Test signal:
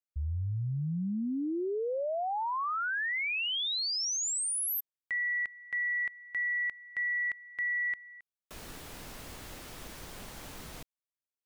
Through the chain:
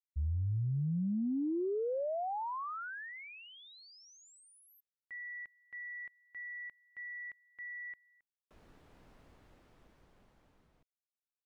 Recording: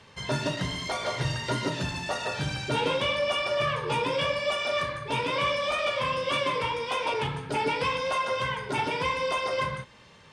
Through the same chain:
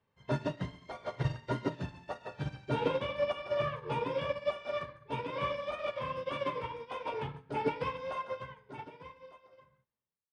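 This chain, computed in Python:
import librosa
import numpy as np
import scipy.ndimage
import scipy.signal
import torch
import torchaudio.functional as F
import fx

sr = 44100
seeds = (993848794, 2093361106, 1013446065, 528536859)

y = fx.fade_out_tail(x, sr, length_s=2.32)
y = fx.lowpass(y, sr, hz=1200.0, slope=6)
y = fx.upward_expand(y, sr, threshold_db=-41.0, expansion=2.5)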